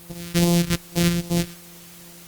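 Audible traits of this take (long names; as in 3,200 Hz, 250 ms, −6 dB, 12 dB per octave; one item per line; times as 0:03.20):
a buzz of ramps at a fixed pitch in blocks of 256 samples
phaser sweep stages 2, 2.5 Hz, lowest notch 740–1,500 Hz
a quantiser's noise floor 8 bits, dither triangular
Opus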